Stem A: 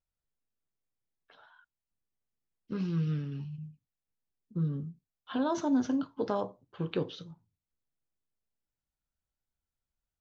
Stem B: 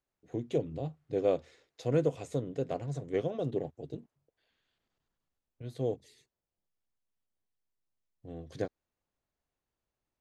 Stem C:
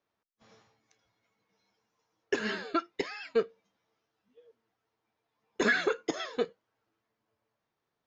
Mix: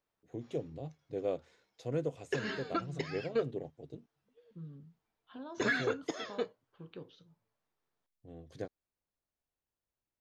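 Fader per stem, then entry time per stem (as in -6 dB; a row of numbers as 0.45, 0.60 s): -16.0, -6.5, -5.0 dB; 0.00, 0.00, 0.00 s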